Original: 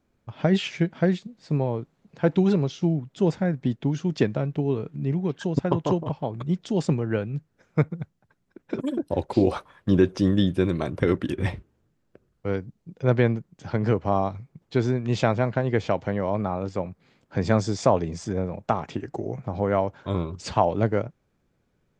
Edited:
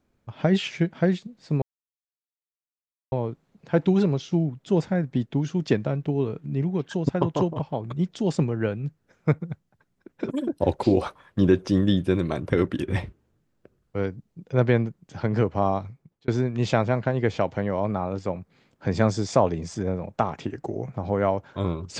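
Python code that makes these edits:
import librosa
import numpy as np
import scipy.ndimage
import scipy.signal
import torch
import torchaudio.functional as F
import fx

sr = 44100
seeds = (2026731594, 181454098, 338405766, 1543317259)

y = fx.edit(x, sr, fx.insert_silence(at_s=1.62, length_s=1.5),
    fx.clip_gain(start_s=9.12, length_s=0.25, db=3.5),
    fx.fade_out_span(start_s=14.33, length_s=0.45), tone=tone)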